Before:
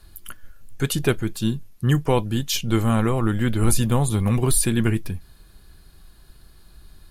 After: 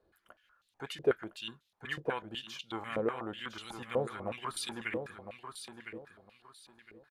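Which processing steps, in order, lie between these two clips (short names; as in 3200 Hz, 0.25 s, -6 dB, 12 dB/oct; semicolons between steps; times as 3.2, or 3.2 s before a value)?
feedback echo 1.009 s, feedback 26%, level -8.5 dB; stepped band-pass 8.1 Hz 490–3700 Hz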